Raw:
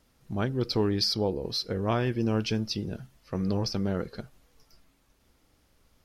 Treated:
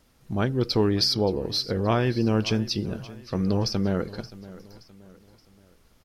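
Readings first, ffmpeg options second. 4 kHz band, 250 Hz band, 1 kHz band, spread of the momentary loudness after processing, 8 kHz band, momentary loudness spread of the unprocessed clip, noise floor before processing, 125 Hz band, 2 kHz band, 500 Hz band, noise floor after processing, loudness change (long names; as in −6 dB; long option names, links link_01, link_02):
+4.0 dB, +4.0 dB, +4.0 dB, 15 LU, +4.0 dB, 12 LU, −67 dBFS, +4.0 dB, +4.0 dB, +4.0 dB, −60 dBFS, +4.0 dB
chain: -af "aecho=1:1:574|1148|1722:0.126|0.0529|0.0222,volume=4dB"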